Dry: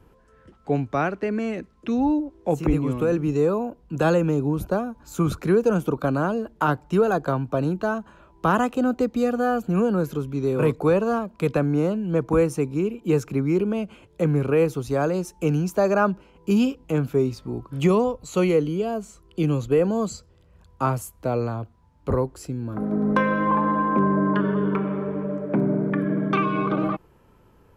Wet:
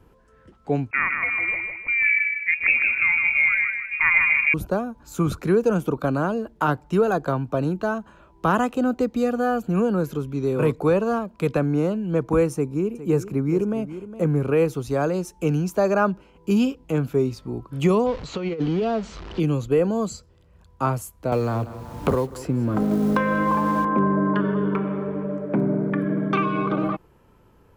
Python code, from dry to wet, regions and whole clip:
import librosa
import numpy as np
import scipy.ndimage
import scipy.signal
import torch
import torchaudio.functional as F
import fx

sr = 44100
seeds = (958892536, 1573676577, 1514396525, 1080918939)

y = fx.chain(x, sr, fx.echo_feedback(ms=157, feedback_pct=40, wet_db=-5.0),
    fx.freq_invert(carrier_hz=2600), at=(0.91, 4.54))
y = fx.chain(y, sr, fx.peak_eq(hz=3200.0, db=-7.0, octaves=1.4),
    fx.echo_single(ms=411, db=-13.5), at=(12.54, 14.46))
y = fx.chain(y, sr, fx.zero_step(step_db=-34.0),
    fx.lowpass(hz=4900.0, slope=24),
    fx.over_compress(threshold_db=-22.0, ratio=-0.5), at=(18.06, 19.4))
y = fx.chain(y, sr, fx.law_mismatch(coded='mu'),
    fx.echo_feedback(ms=189, feedback_pct=33, wet_db=-20.0),
    fx.band_squash(depth_pct=100), at=(21.32, 23.85))